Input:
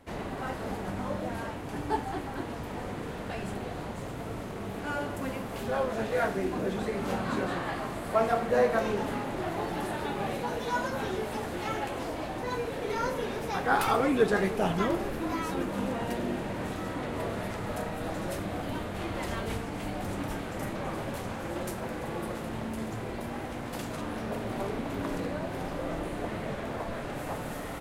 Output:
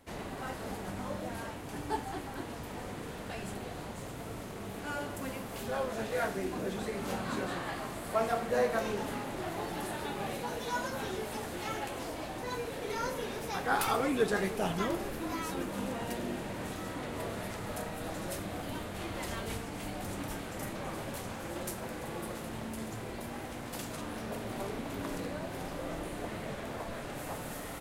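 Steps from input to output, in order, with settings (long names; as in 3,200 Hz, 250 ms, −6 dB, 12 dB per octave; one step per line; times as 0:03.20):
high-shelf EQ 3,800 Hz +8.5 dB
level −5 dB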